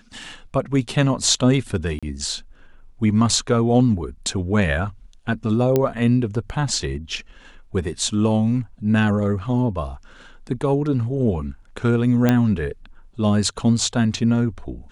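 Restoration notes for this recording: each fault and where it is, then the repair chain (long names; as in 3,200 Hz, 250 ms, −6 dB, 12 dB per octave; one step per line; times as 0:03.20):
0:01.99–0:02.03: drop-out 36 ms
0:05.76: click −6 dBFS
0:12.29: click −5 dBFS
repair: click removal
repair the gap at 0:01.99, 36 ms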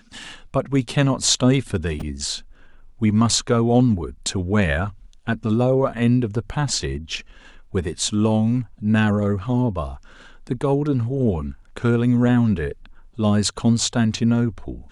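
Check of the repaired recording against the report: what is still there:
0:05.76: click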